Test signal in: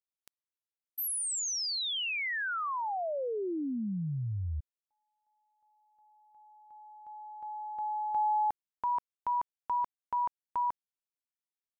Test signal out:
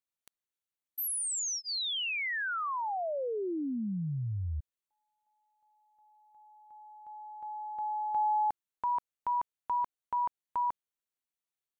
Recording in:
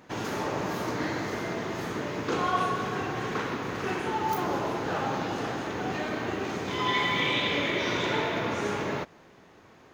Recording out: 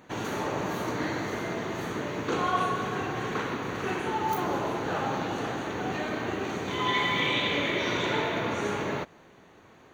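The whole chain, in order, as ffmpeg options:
-af "asuperstop=centerf=5100:order=4:qfactor=6.8"

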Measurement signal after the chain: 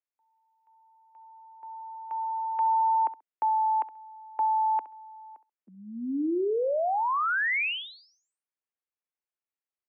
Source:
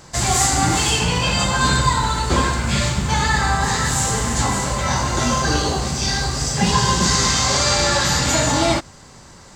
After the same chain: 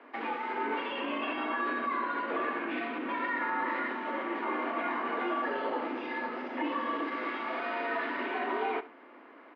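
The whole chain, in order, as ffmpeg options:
-af "alimiter=limit=-14.5dB:level=0:latency=1:release=61,highpass=f=160:t=q:w=0.5412,highpass=f=160:t=q:w=1.307,lowpass=f=2.6k:t=q:w=0.5176,lowpass=f=2.6k:t=q:w=0.7071,lowpass=f=2.6k:t=q:w=1.932,afreqshift=110,aecho=1:1:67|134:0.158|0.0285,volume=-6.5dB"

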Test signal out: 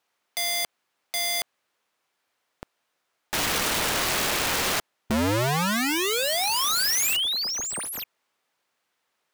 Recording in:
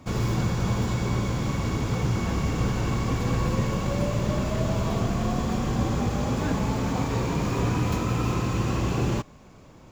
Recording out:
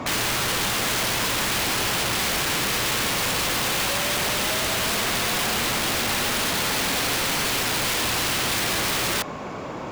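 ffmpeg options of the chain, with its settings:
-filter_complex "[0:a]asplit=2[a][b];[b]highpass=f=720:p=1,volume=32dB,asoftclip=type=tanh:threshold=-11dB[c];[a][c]amix=inputs=2:normalize=0,lowpass=f=1.3k:p=1,volume=-6dB,aeval=exprs='(mod(10*val(0)+1,2)-1)/10':c=same"

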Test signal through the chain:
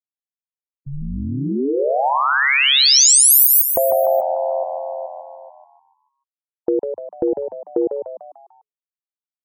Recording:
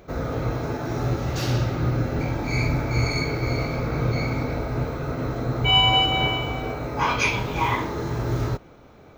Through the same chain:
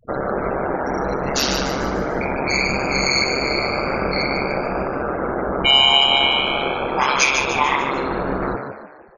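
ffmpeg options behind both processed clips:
-filter_complex "[0:a]afftfilt=real='re*gte(hypot(re,im),0.0224)':imag='im*gte(hypot(re,im),0.0224)':win_size=1024:overlap=0.75,bass=f=250:g=-14,treble=f=4k:g=1,acompressor=threshold=-35dB:ratio=2,crystalizer=i=2:c=0,aeval=exprs='val(0)*sin(2*PI*68*n/s)':c=same,asplit=6[a][b][c][d][e][f];[b]adelay=148,afreqshift=84,volume=-7dB[g];[c]adelay=296,afreqshift=168,volume=-13.9dB[h];[d]adelay=444,afreqshift=252,volume=-20.9dB[i];[e]adelay=592,afreqshift=336,volume=-27.8dB[j];[f]adelay=740,afreqshift=420,volume=-34.7dB[k];[a][g][h][i][j][k]amix=inputs=6:normalize=0,alimiter=level_in=17dB:limit=-1dB:release=50:level=0:latency=1,volume=-2dB"

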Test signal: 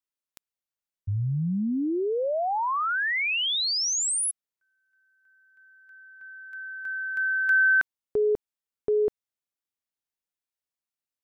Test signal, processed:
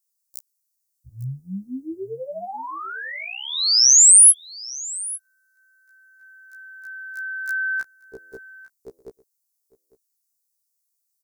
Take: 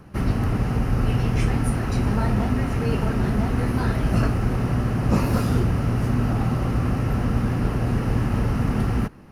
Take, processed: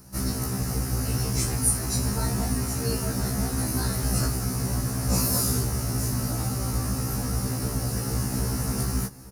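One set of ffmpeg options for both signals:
-af "aecho=1:1:852:0.106,aexciter=amount=14.3:drive=1.5:freq=4.5k,afftfilt=real='re*1.73*eq(mod(b,3),0)':imag='im*1.73*eq(mod(b,3),0)':win_size=2048:overlap=0.75,volume=-3.5dB"

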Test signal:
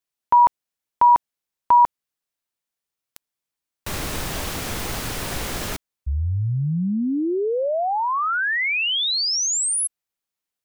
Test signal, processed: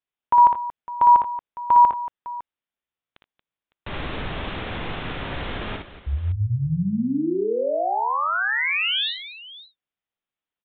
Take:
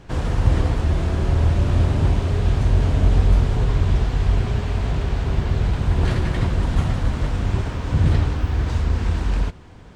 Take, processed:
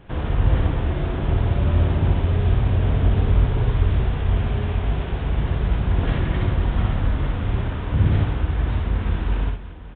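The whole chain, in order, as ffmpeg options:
-af "aecho=1:1:58|77|230|556:0.631|0.188|0.211|0.15,aresample=8000,aresample=44100,volume=-2.5dB"

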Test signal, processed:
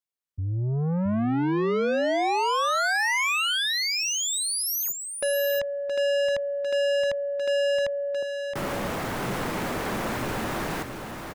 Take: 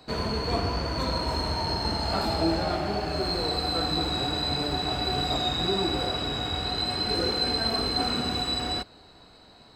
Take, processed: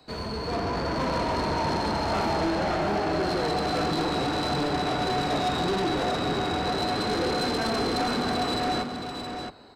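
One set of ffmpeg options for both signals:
-filter_complex "[0:a]acrossover=split=120|2100[a][b][c];[b]dynaudnorm=f=110:g=11:m=13dB[d];[a][d][c]amix=inputs=3:normalize=0,asoftclip=type=tanh:threshold=-20.5dB,aecho=1:1:670:0.473,volume=-3.5dB"

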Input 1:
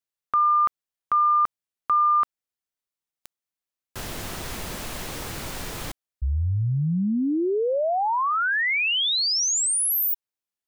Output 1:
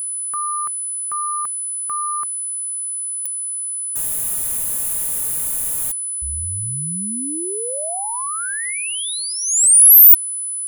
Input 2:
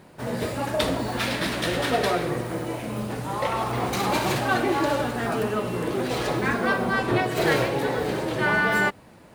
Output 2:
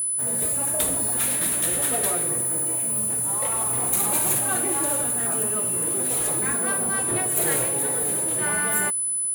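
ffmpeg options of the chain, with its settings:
-af "aeval=exprs='val(0)+0.0126*sin(2*PI*10000*n/s)':c=same,aexciter=amount=11.3:drive=6.1:freq=7.4k,volume=-6.5dB"

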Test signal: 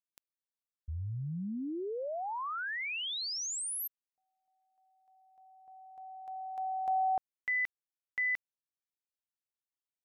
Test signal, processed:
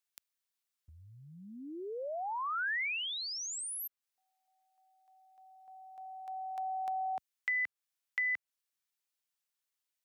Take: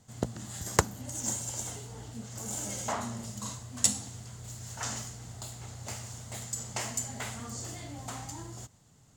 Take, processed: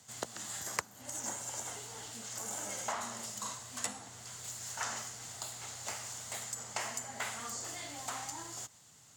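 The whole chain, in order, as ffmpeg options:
-filter_complex "[0:a]highpass=74,tiltshelf=f=680:g=-7.5,acrossover=split=270|1900[a][b][c];[a]acompressor=threshold=-58dB:ratio=3[d];[b]acompressor=threshold=-35dB:ratio=6[e];[c]acompressor=threshold=-41dB:ratio=4[f];[d][e][f]amix=inputs=3:normalize=0"

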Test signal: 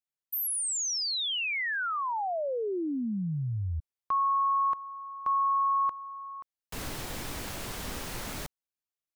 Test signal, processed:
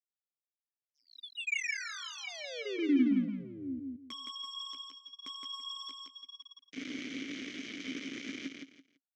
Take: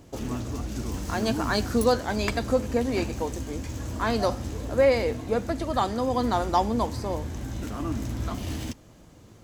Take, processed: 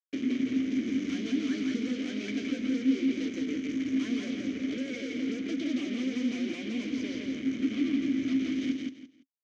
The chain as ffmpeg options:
-filter_complex "[0:a]tiltshelf=f=880:g=6,flanger=delay=9.5:depth=5.8:regen=-27:speed=0.91:shape=sinusoidal,asplit=2[a][b];[b]highpass=f=720:p=1,volume=24dB,asoftclip=type=tanh:threshold=-9dB[c];[a][c]amix=inputs=2:normalize=0,lowpass=f=1.6k:p=1,volume=-6dB,acrusher=bits=3:mix=0:aa=0.5,lowpass=f=6.2k:t=q:w=5.6,acompressor=threshold=-28dB:ratio=5:attack=55:release=152:detection=peak,asoftclip=type=tanh:threshold=-20dB,asplit=3[d][e][f];[d]bandpass=f=270:t=q:w=8,volume=0dB[g];[e]bandpass=f=2.29k:t=q:w=8,volume=-6dB[h];[f]bandpass=f=3.01k:t=q:w=8,volume=-9dB[i];[g][h][i]amix=inputs=3:normalize=0,lowshelf=f=73:g=-10.5,aecho=1:1:168|336|504:0.708|0.17|0.0408,volume=6.5dB"

